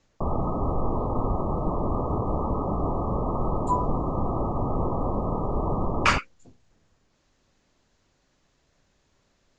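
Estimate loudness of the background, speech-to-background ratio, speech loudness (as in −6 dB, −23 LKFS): −28.5 LKFS, 0.5 dB, −28.0 LKFS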